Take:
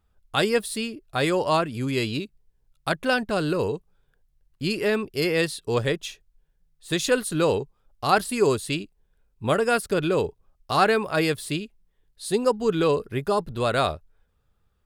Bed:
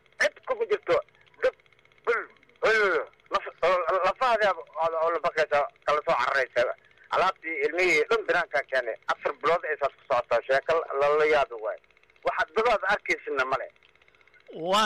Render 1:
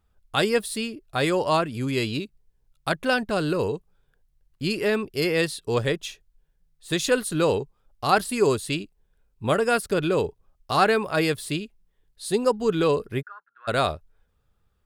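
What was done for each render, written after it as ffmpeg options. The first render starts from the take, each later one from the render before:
-filter_complex "[0:a]asplit=3[s0][s1][s2];[s0]afade=t=out:st=13.21:d=0.02[s3];[s1]asuperpass=centerf=1500:order=4:qfactor=4,afade=t=in:st=13.21:d=0.02,afade=t=out:st=13.67:d=0.02[s4];[s2]afade=t=in:st=13.67:d=0.02[s5];[s3][s4][s5]amix=inputs=3:normalize=0"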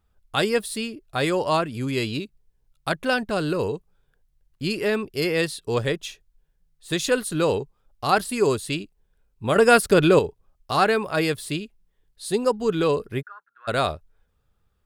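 -filter_complex "[0:a]asplit=3[s0][s1][s2];[s0]atrim=end=9.562[s3];[s1]atrim=start=9.558:end=10.192,asetpts=PTS-STARTPTS,volume=2.24[s4];[s2]atrim=start=10.188[s5];[s3][s4]acrossfade=d=0.004:c1=hsin:c2=hsin[s6];[s6][s5]acrossfade=d=0.004:c1=hsin:c2=hsin"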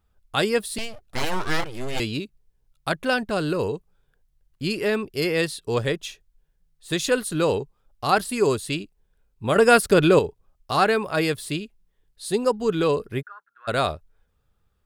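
-filter_complex "[0:a]asettb=1/sr,asplit=3[s0][s1][s2];[s0]atrim=end=0.784[s3];[s1]atrim=start=0.78:end=2,asetpts=PTS-STARTPTS,afade=t=in:d=0.004:c=qsin,afade=t=out:st=1.216:d=0.004:c=qsin,aeval=exprs='abs(val(0))':c=same[s4];[s2]atrim=start=1.996[s5];[s3][s4]acrossfade=d=0.004:c1=hsin:c2=qsin[s6];[s6][s5]acrossfade=d=0.004:c1=qsin:c2=hsin"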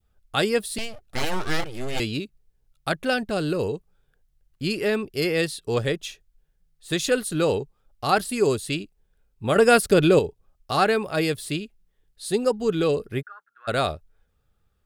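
-af "bandreject=f=1000:w=10,adynamicequalizer=threshold=0.0178:dfrequency=1300:dqfactor=1:tfrequency=1300:tqfactor=1:attack=5:release=100:ratio=0.375:range=3:mode=cutabove:tftype=bell"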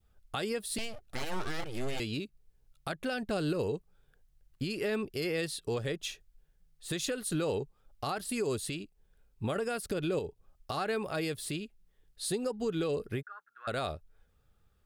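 -af "acompressor=threshold=0.0891:ratio=6,alimiter=limit=0.0668:level=0:latency=1:release=342"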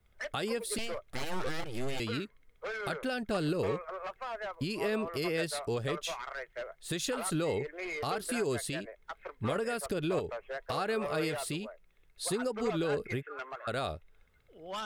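-filter_complex "[1:a]volume=0.158[s0];[0:a][s0]amix=inputs=2:normalize=0"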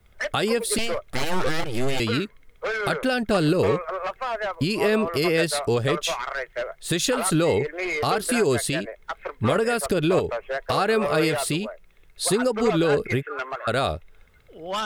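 -af "volume=3.55"

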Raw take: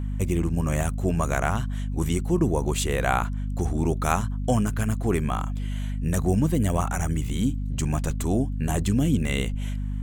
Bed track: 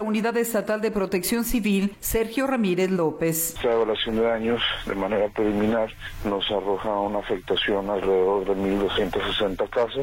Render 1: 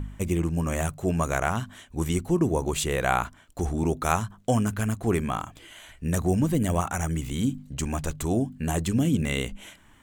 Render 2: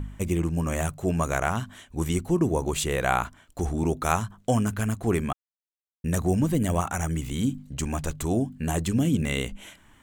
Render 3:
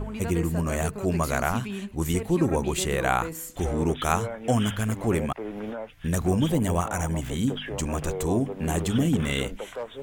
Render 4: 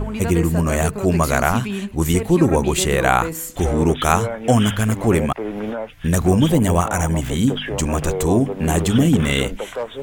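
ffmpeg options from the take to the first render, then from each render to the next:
-af "bandreject=f=50:t=h:w=4,bandreject=f=100:t=h:w=4,bandreject=f=150:t=h:w=4,bandreject=f=200:t=h:w=4,bandreject=f=250:t=h:w=4"
-filter_complex "[0:a]asplit=3[s0][s1][s2];[s0]atrim=end=5.33,asetpts=PTS-STARTPTS,afade=t=out:st=5.326:d=0.004:c=hsin[s3];[s1]atrim=start=5.33:end=6.04,asetpts=PTS-STARTPTS,volume=0[s4];[s2]atrim=start=6.04,asetpts=PTS-STARTPTS,afade=t=in:d=0.004:c=hsin[s5];[s3][s4][s5]concat=n=3:v=0:a=1"
-filter_complex "[1:a]volume=0.251[s0];[0:a][s0]amix=inputs=2:normalize=0"
-af "volume=2.51,alimiter=limit=0.891:level=0:latency=1"

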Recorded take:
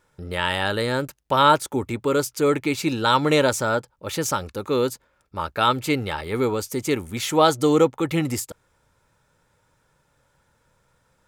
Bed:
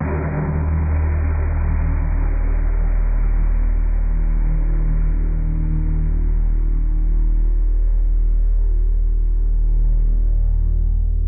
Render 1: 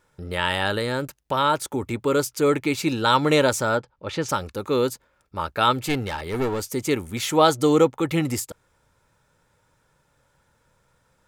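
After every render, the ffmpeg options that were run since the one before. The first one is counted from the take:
-filter_complex "[0:a]asettb=1/sr,asplit=3[s0][s1][s2];[s0]atrim=end=0.784[s3];[s1]atrim=start=0.78:end=1.88,asetpts=PTS-STARTPTS,afade=t=in:d=0.004:c=qsin,afade=t=out:st=1.096:d=0.004:c=qsin,acompressor=threshold=0.0631:ratio=1.5:attack=3.2:release=140:knee=1:detection=peak[s4];[s2]atrim=start=1.876[s5];[s3][s4]acrossfade=d=0.004:c1=hsin:c2=qsin[s6];[s6][s5]acrossfade=d=0.004:c1=qsin:c2=hsin,asplit=3[s7][s8][s9];[s7]afade=t=out:st=3.77:d=0.02[s10];[s8]lowpass=4200,afade=t=in:st=3.77:d=0.02,afade=t=out:st=4.28:d=0.02[s11];[s9]afade=t=in:st=4.28:d=0.02[s12];[s10][s11][s12]amix=inputs=3:normalize=0,asettb=1/sr,asplit=3[s13][s14][s15];[s13]atrim=end=5.874[s16];[s14]atrim=start=5.87:end=6.66,asetpts=PTS-STARTPTS,afade=t=in:d=0.004:c=qsin,afade=t=out:st=0.786:d=0.004:c=qsin,aeval=exprs='clip(val(0),-1,0.0596)':c=same[s17];[s15]atrim=start=6.656[s18];[s16][s17]acrossfade=d=0.004:c1=hsin:c2=qsin[s19];[s19][s18]acrossfade=d=0.004:c1=qsin:c2=hsin"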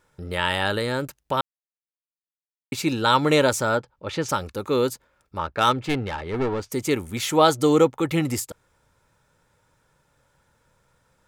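-filter_complex "[0:a]asettb=1/sr,asplit=3[s0][s1][s2];[s0]atrim=end=5.384[s3];[s1]atrim=start=5.38:end=6.72,asetpts=PTS-STARTPTS,afade=t=in:d=0.004:c=qsin,afade=t=out:st=1.336:d=0.004:c=qsin,adynamicsmooth=sensitivity=2:basefreq=2800[s4];[s2]atrim=start=6.716[s5];[s3][s4]acrossfade=d=0.004:c1=hsin:c2=qsin[s6];[s6][s5]acrossfade=d=0.004:c1=qsin:c2=hsin,asplit=3[s7][s8][s9];[s7]atrim=end=1.41,asetpts=PTS-STARTPTS,afade=t=out:st=1.406:d=0.004:c=hsin[s10];[s8]atrim=start=1.41:end=2.72,asetpts=PTS-STARTPTS,volume=0[s11];[s9]atrim=start=2.72,asetpts=PTS-STARTPTS,afade=t=in:d=0.004:c=hsin[s12];[s10][s11][s12]concat=n=3:v=0:a=1"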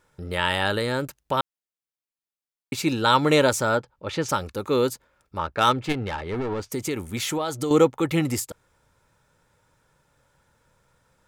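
-filter_complex "[0:a]asettb=1/sr,asplit=3[s0][s1][s2];[s0]atrim=end=5.924[s3];[s1]atrim=start=5.92:end=7.71,asetpts=PTS-STARTPTS,afade=t=in:d=0.004:c=qsin,afade=t=out:st=1.786:d=0.004:c=qsin,acompressor=threshold=0.0708:ratio=6:attack=3.2:release=140:knee=1:detection=peak[s4];[s2]atrim=start=7.706[s5];[s3][s4]acrossfade=d=0.004:c1=hsin:c2=qsin[s6];[s6][s5]acrossfade=d=0.004:c1=qsin:c2=hsin"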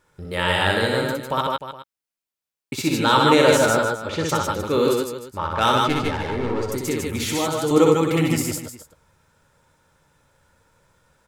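-filter_complex "[0:a]asplit=2[s0][s1];[s1]adelay=13,volume=0.237[s2];[s0][s2]amix=inputs=2:normalize=0,aecho=1:1:62|146|157|304|415:0.708|0.473|0.708|0.282|0.141"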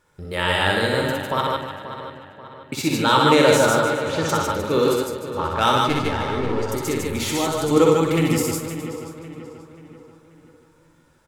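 -filter_complex "[0:a]asplit=2[s0][s1];[s1]adelay=48,volume=0.282[s2];[s0][s2]amix=inputs=2:normalize=0,asplit=2[s3][s4];[s4]adelay=534,lowpass=f=3700:p=1,volume=0.266,asplit=2[s5][s6];[s6]adelay=534,lowpass=f=3700:p=1,volume=0.46,asplit=2[s7][s8];[s8]adelay=534,lowpass=f=3700:p=1,volume=0.46,asplit=2[s9][s10];[s10]adelay=534,lowpass=f=3700:p=1,volume=0.46,asplit=2[s11][s12];[s12]adelay=534,lowpass=f=3700:p=1,volume=0.46[s13];[s3][s5][s7][s9][s11][s13]amix=inputs=6:normalize=0"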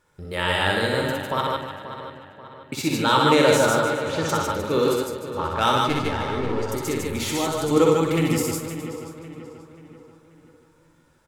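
-af "volume=0.794"

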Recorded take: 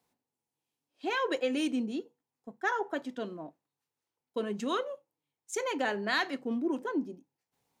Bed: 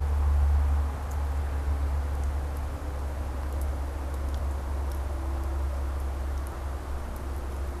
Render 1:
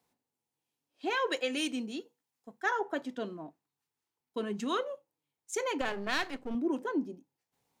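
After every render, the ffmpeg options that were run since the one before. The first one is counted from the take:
-filter_complex "[0:a]asettb=1/sr,asplit=3[s0][s1][s2];[s0]atrim=end=1.274[s3];[s1]atrim=start=1.27:end=2.66,asetpts=PTS-STARTPTS,afade=t=in:d=0.004:c=qsin,afade=t=out:st=1.386:d=0.004:c=qsin,tiltshelf=f=1200:g=-5[s4];[s2]atrim=start=2.656[s5];[s3][s4]acrossfade=d=0.004:c1=hsin:c2=qsin[s6];[s6][s5]acrossfade=d=0.004:c1=qsin:c2=hsin,asettb=1/sr,asplit=3[s7][s8][s9];[s7]atrim=end=3.314[s10];[s8]atrim=start=3.31:end=4.76,asetpts=PTS-STARTPTS,afade=t=in:d=0.004:c=qsin,afade=t=out:st=1.446:d=0.004:c=qsin,equalizer=f=550:w=4.3:g=-8.5[s11];[s9]atrim=start=4.756[s12];[s10][s11]acrossfade=d=0.004:c1=hsin:c2=qsin[s13];[s13][s12]acrossfade=d=0.004:c1=qsin:c2=hsin,asettb=1/sr,asplit=3[s14][s15][s16];[s14]atrim=end=5.814[s17];[s15]atrim=start=5.81:end=6.55,asetpts=PTS-STARTPTS,afade=t=in:d=0.004:c=qsin,afade=t=out:st=0.736:d=0.004:c=qsin,aeval=exprs='if(lt(val(0),0),0.251*val(0),val(0))':c=same[s18];[s16]atrim=start=6.546[s19];[s17][s18]acrossfade=d=0.004:c1=hsin:c2=qsin[s20];[s20][s19]acrossfade=d=0.004:c1=qsin:c2=hsin"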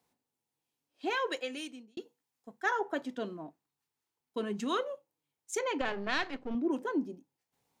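-filter_complex "[0:a]asettb=1/sr,asplit=3[s0][s1][s2];[s0]atrim=end=5.594[s3];[s1]atrim=start=5.59:end=6.71,asetpts=PTS-STARTPTS,afade=t=in:d=0.004:c=qsin,afade=t=out:st=1.116:d=0.004:c=qsin,lowpass=4900[s4];[s2]atrim=start=6.706[s5];[s3][s4]acrossfade=d=0.004:c1=hsin:c2=qsin[s6];[s6][s5]acrossfade=d=0.004:c1=qsin:c2=hsin,asplit=2[s7][s8];[s7]atrim=end=1.97,asetpts=PTS-STARTPTS,afade=t=out:st=1.05:d=0.92[s9];[s8]atrim=start=1.97,asetpts=PTS-STARTPTS,afade=t=in:d=0.004:c=hsin[s10];[s9][s10]concat=n=2:v=0:a=1"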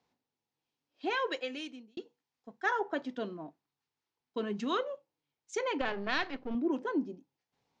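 -af "lowpass=f=5800:w=0.5412,lowpass=f=5800:w=1.3066"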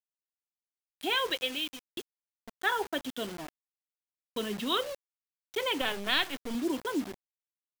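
-af "lowpass=f=3400:t=q:w=5,acrusher=bits=6:mix=0:aa=0.000001"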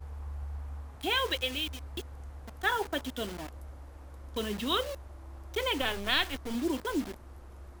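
-filter_complex "[1:a]volume=0.168[s0];[0:a][s0]amix=inputs=2:normalize=0"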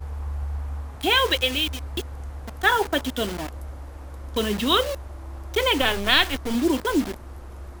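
-af "volume=2.99"

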